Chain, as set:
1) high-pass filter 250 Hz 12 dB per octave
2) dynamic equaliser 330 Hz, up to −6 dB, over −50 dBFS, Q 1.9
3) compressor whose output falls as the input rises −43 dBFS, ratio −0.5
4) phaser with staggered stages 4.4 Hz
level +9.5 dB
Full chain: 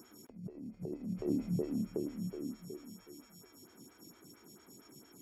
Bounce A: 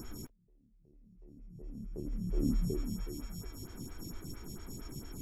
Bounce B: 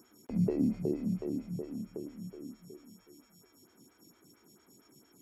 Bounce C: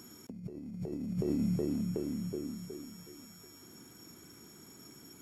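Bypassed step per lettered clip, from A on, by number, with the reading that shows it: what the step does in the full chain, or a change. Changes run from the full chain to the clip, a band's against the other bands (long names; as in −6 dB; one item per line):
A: 1, 500 Hz band −6.5 dB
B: 3, change in momentary loudness spread −2 LU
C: 4, 4 kHz band +3.0 dB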